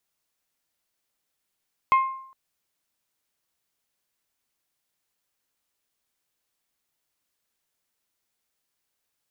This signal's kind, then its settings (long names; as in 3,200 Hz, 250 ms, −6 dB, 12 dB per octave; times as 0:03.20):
struck glass bell, length 0.41 s, lowest mode 1,060 Hz, decay 0.65 s, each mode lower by 10.5 dB, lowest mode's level −13 dB